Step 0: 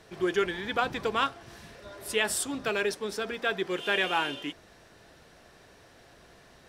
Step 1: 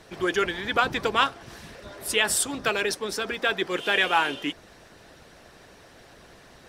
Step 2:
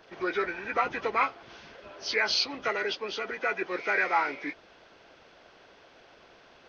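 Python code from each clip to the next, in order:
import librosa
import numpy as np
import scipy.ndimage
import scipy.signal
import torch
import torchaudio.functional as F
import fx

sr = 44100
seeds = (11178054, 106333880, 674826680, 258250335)

y1 = fx.hpss(x, sr, part='percussive', gain_db=8)
y2 = fx.freq_compress(y1, sr, knee_hz=1200.0, ratio=1.5)
y2 = fx.bass_treble(y2, sr, bass_db=-11, treble_db=2)
y2 = y2 * 10.0 ** (-3.0 / 20.0)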